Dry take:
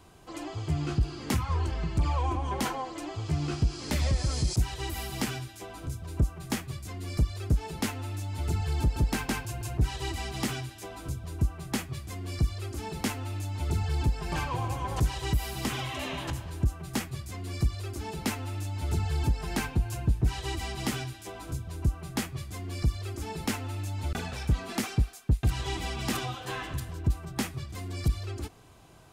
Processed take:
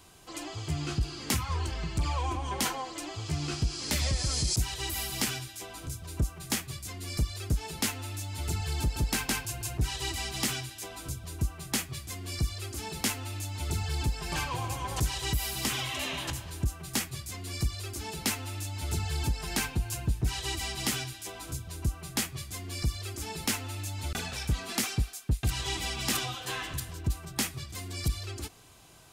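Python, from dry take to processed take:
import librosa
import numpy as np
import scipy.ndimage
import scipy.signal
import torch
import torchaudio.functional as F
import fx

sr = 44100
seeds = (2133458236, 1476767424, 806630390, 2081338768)

y = fx.high_shelf(x, sr, hz=2100.0, db=11.0)
y = F.gain(torch.from_numpy(y), -3.5).numpy()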